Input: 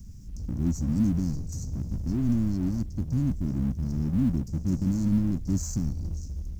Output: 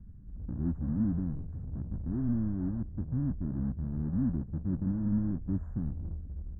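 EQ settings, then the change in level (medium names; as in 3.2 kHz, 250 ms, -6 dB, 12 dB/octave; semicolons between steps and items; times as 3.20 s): elliptic low-pass 1.7 kHz, stop band 40 dB; -4.5 dB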